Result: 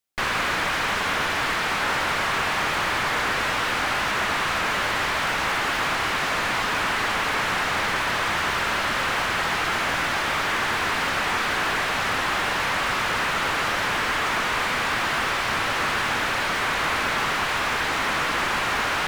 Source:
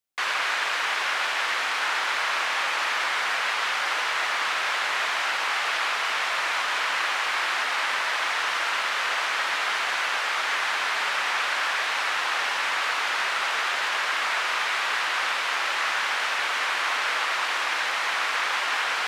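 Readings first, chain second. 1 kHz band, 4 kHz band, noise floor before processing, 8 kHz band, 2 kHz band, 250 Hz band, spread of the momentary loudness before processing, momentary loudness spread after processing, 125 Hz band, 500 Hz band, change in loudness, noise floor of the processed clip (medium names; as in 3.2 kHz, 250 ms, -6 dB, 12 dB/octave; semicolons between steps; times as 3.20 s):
+2.5 dB, 0.0 dB, -27 dBFS, +2.0 dB, +1.0 dB, +17.0 dB, 0 LU, 0 LU, no reading, +7.0 dB, +1.5 dB, -25 dBFS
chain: Chebyshev shaper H 8 -15 dB, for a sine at -12.5 dBFS; slew-rate limiter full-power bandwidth 120 Hz; trim +3 dB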